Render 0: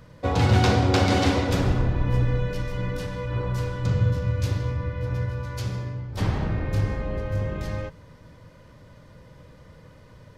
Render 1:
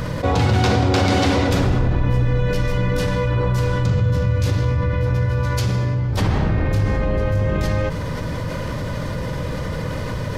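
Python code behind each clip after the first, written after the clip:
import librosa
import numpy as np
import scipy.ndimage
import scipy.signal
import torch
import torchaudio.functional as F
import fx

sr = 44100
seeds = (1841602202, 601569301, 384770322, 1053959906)

y = fx.env_flatten(x, sr, amount_pct=70)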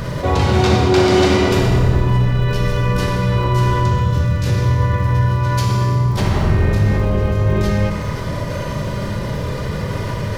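y = fx.dmg_crackle(x, sr, seeds[0], per_s=70.0, level_db=-33.0)
y = fx.rev_fdn(y, sr, rt60_s=1.8, lf_ratio=0.7, hf_ratio=0.9, size_ms=15.0, drr_db=0.0)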